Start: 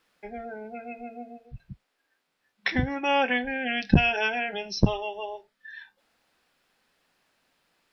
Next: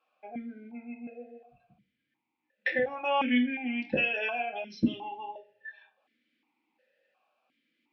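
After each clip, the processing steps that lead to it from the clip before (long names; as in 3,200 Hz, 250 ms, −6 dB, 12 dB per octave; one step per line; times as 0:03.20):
on a send at −2 dB: convolution reverb, pre-delay 3 ms
on the sum: formant filter that steps through the vowels 2.8 Hz
level +5.5 dB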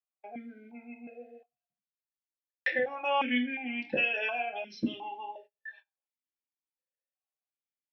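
noise gate −51 dBFS, range −31 dB
low-shelf EQ 200 Hz −12 dB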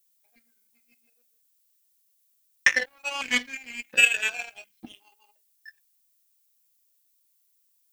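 flat-topped bell 2,200 Hz +13 dB
power curve on the samples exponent 2
background noise violet −72 dBFS
level +3.5 dB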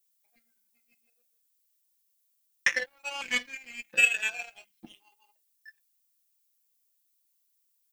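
comb filter 5.8 ms, depth 44%
level −5.5 dB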